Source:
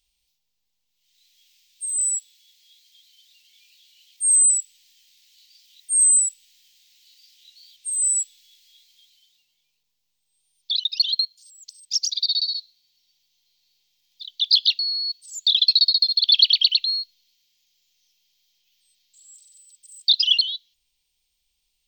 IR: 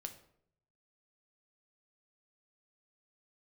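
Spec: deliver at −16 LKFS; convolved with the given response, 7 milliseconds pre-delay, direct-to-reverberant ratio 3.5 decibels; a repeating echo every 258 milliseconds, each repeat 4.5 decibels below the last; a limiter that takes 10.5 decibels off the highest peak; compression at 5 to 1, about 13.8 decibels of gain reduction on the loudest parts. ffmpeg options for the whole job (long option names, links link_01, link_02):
-filter_complex "[0:a]acompressor=threshold=-28dB:ratio=5,alimiter=level_in=1dB:limit=-24dB:level=0:latency=1,volume=-1dB,aecho=1:1:258|516|774|1032|1290|1548|1806|2064|2322:0.596|0.357|0.214|0.129|0.0772|0.0463|0.0278|0.0167|0.01,asplit=2[link_01][link_02];[1:a]atrim=start_sample=2205,adelay=7[link_03];[link_02][link_03]afir=irnorm=-1:irlink=0,volume=0dB[link_04];[link_01][link_04]amix=inputs=2:normalize=0,volume=13dB"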